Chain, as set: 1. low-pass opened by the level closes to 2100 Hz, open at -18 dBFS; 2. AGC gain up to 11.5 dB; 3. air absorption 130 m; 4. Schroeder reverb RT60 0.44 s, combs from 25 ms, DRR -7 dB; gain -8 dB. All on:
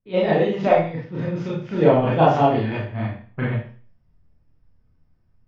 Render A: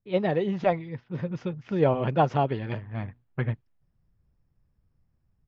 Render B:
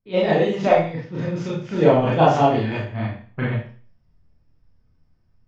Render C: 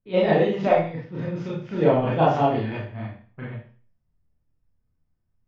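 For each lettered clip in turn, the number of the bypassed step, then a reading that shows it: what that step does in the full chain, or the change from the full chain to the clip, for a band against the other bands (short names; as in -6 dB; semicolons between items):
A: 4, 125 Hz band +2.0 dB; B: 3, 4 kHz band +2.5 dB; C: 2, momentary loudness spread change +5 LU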